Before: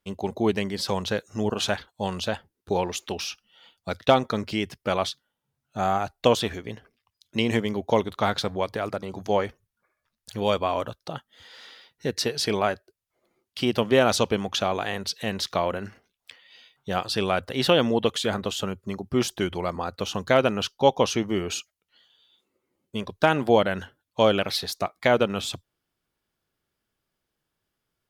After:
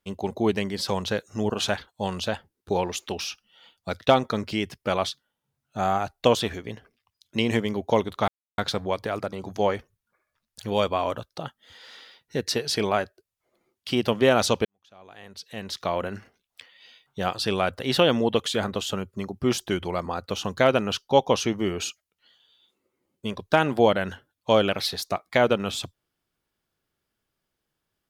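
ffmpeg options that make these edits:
-filter_complex "[0:a]asplit=3[a][b][c];[a]atrim=end=8.28,asetpts=PTS-STARTPTS,afade=t=out:st=8.276:d=0.004:c=hsin,apad=pad_dur=0.3[d];[b]atrim=start=8.28:end=14.35,asetpts=PTS-STARTPTS,afade=t=in:d=0.004:c=hsin,afade=t=out:st=6.066:d=0.004:c=hsin[e];[c]atrim=start=14.35,asetpts=PTS-STARTPTS,afade=t=in:d=1.41:c=qua[f];[d][e][f]concat=n=3:v=0:a=1"

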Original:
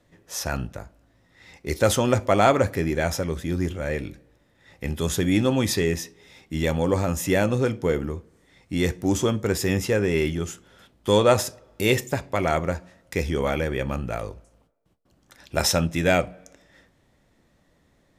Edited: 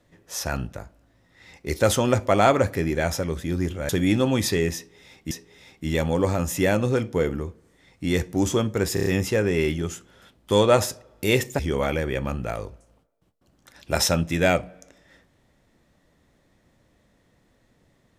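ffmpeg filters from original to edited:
-filter_complex "[0:a]asplit=8[a][b][c][d][e][f][g][h];[a]atrim=end=3.892[i];[b]atrim=start=5.138:end=6.562[j];[c]atrim=start=5.998:end=9.662[k];[d]atrim=start=9.628:end=9.662[l];[e]atrim=start=9.628:end=9.662[m];[f]atrim=start=9.628:end=9.662[n];[g]atrim=start=9.628:end=12.162[o];[h]atrim=start=13.228[p];[i][j]acrossfade=d=0.004:c1=hsin:c2=hsin[q];[q][k]acrossfade=d=0.004:c1=hsin:c2=hsin[r];[r][l]acrossfade=d=0.004:c1=hsin:c2=hsin[s];[s][m]acrossfade=d=0.004:c1=hsin:c2=hsin[t];[t][n]acrossfade=d=0.004:c1=hsin:c2=hsin[u];[u][o]acrossfade=d=0.004:c1=hsin:c2=hsin[v];[v][p]acrossfade=d=0.004:c1=hsin:c2=hsin"

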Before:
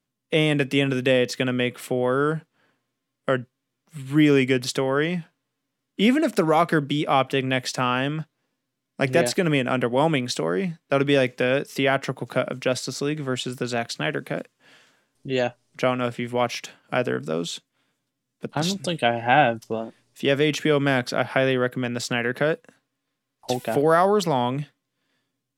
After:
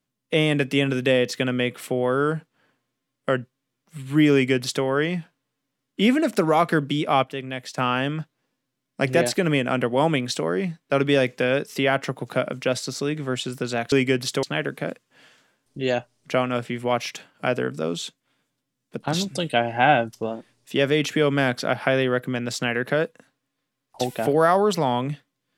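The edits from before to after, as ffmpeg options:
-filter_complex "[0:a]asplit=5[a][b][c][d][e];[a]atrim=end=7.242[f];[b]atrim=start=7.238:end=7.782,asetpts=PTS-STARTPTS,volume=-8dB[g];[c]atrim=start=7.778:end=13.922[h];[d]atrim=start=4.328:end=4.842[i];[e]atrim=start=13.918[j];[f][g]acrossfade=d=0.004:c1=hsin:c2=hsin[k];[k][h]acrossfade=d=0.004:c1=hsin:c2=hsin[l];[l][i]acrossfade=d=0.004:c1=hsin:c2=hsin[m];[m][j]acrossfade=d=0.004:c1=hsin:c2=hsin"

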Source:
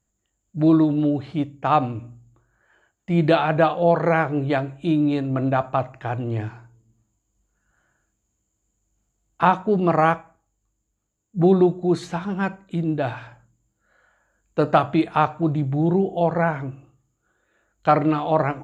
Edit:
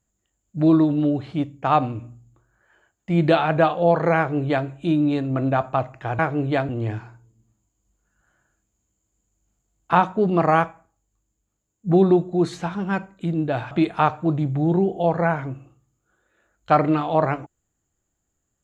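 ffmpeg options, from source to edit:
-filter_complex "[0:a]asplit=4[a][b][c][d];[a]atrim=end=6.192[e];[b]atrim=start=4.168:end=4.672[f];[c]atrim=start=6.188:end=13.212[g];[d]atrim=start=14.878[h];[e][f]acrossfade=d=0.004:c1=hsin:c2=hsin[i];[i][g]acrossfade=d=0.004:c1=hsin:c2=hsin[j];[j][h]acrossfade=d=0.004:c1=hsin:c2=hsin"

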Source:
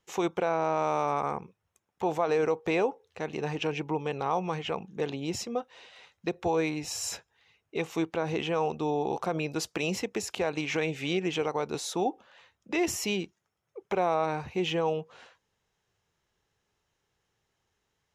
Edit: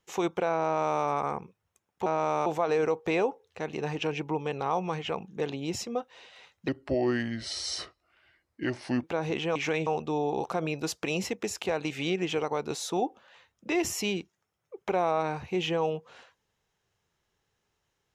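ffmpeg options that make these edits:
-filter_complex "[0:a]asplit=8[a][b][c][d][e][f][g][h];[a]atrim=end=2.062[i];[b]atrim=start=0.638:end=1.042[j];[c]atrim=start=2.058:end=6.284[k];[d]atrim=start=6.28:end=8.07,asetpts=PTS-STARTPTS,asetrate=33516,aresample=44100,atrim=end_sample=103867,asetpts=PTS-STARTPTS[l];[e]atrim=start=8.066:end=8.592[m];[f]atrim=start=10.628:end=10.942[n];[g]atrim=start=8.588:end=10.632[o];[h]atrim=start=10.938[p];[i][j]acrossfade=d=0.004:c1=hsin:c2=hsin[q];[q][k]acrossfade=d=0.004:c1=hsin:c2=hsin[r];[r][l]acrossfade=d=0.004:c1=hsin:c2=hsin[s];[s][m]acrossfade=d=0.004:c1=hsin:c2=hsin[t];[t][n]acrossfade=d=0.004:c1=hsin:c2=hsin[u];[u][o]acrossfade=d=0.004:c1=hsin:c2=hsin[v];[v][p]acrossfade=d=0.004:c1=hsin:c2=hsin"

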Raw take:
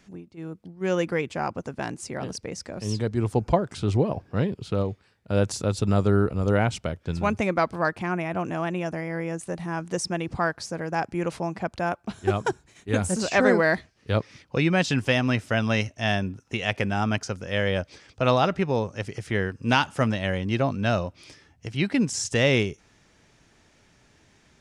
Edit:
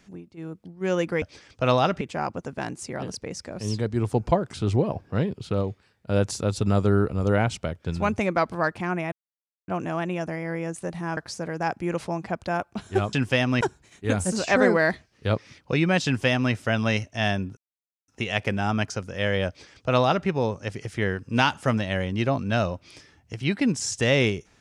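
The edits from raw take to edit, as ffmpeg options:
-filter_complex "[0:a]asplit=8[a][b][c][d][e][f][g][h];[a]atrim=end=1.222[i];[b]atrim=start=17.808:end=18.602[j];[c]atrim=start=1.218:end=8.33,asetpts=PTS-STARTPTS,afade=t=out:st=7.108:d=0.004:c=hsin,apad=pad_dur=0.56[k];[d]atrim=start=8.33:end=9.822,asetpts=PTS-STARTPTS,afade=t=in:d=0.004:c=hsin[l];[e]atrim=start=10.488:end=12.452[m];[f]atrim=start=14.888:end=15.372[n];[g]atrim=start=12.448:end=16.41,asetpts=PTS-STARTPTS,afade=t=out:st=3.958:d=0.004:c=hsin,apad=pad_dur=0.51[o];[h]atrim=start=16.41,asetpts=PTS-STARTPTS,afade=t=in:d=0.004:c=hsin[p];[i][j]acrossfade=d=0.004:c1=hsin:c2=hsin[q];[k][l]concat=n=2:v=0:a=1[r];[q][r]acrossfade=d=0.004:c1=hsin:c2=hsin[s];[s][m]acrossfade=d=0.004:c1=hsin:c2=hsin[t];[t][n]acrossfade=d=0.004:c1=hsin:c2=hsin[u];[o][p]concat=n=2:v=0:a=1[v];[u][v]acrossfade=d=0.004:c1=hsin:c2=hsin"

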